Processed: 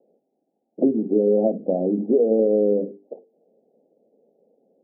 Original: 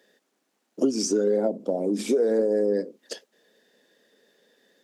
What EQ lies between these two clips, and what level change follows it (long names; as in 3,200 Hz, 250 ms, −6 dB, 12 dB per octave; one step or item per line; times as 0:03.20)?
Butterworth low-pass 810 Hz 96 dB per octave
mains-hum notches 50/100/150/200/250/300/350/400/450 Hz
dynamic equaliser 180 Hz, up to +4 dB, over −43 dBFS, Q 2
+4.0 dB